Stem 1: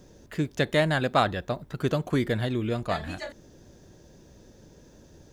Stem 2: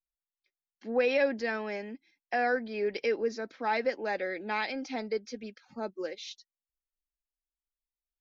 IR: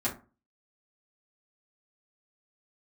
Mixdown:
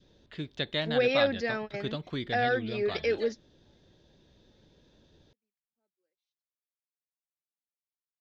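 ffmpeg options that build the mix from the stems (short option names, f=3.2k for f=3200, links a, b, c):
-filter_complex "[0:a]lowpass=f=3.7k:t=q:w=3.9,adynamicequalizer=threshold=0.0126:dfrequency=840:dqfactor=1.1:tfrequency=840:tqfactor=1.1:attack=5:release=100:ratio=0.375:range=2:mode=cutabove:tftype=bell,volume=-10dB,asplit=2[a][b];[1:a]bandreject=f=990:w=5.9,volume=1dB[c];[b]apad=whole_len=361921[d];[c][d]sidechaingate=range=-50dB:threshold=-49dB:ratio=16:detection=peak[e];[a][e]amix=inputs=2:normalize=0"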